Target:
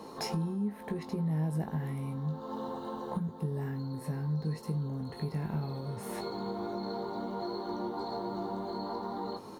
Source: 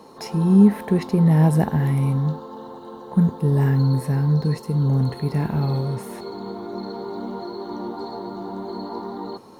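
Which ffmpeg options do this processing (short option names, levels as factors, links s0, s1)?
-filter_complex "[0:a]acompressor=threshold=0.0282:ratio=10,asplit=2[s0][s1];[s1]adelay=19,volume=0.447[s2];[s0][s2]amix=inputs=2:normalize=0,volume=0.891"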